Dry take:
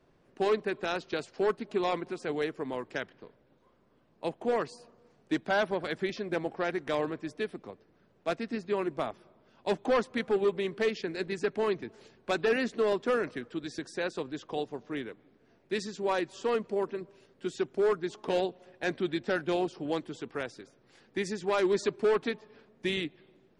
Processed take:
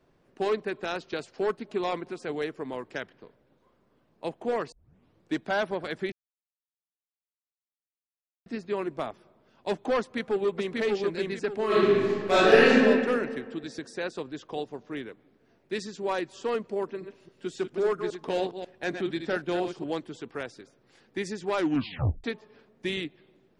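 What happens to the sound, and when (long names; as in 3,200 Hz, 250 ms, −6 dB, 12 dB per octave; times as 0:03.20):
0:04.72: tape start 0.61 s
0:06.12–0:08.46: silence
0:09.99–0:10.76: delay throw 590 ms, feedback 30%, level −1.5 dB
0:11.66–0:12.69: thrown reverb, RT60 1.8 s, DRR −12 dB
0:16.88–0:19.84: delay that plays each chunk backwards 136 ms, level −7.5 dB
0:21.57: tape stop 0.67 s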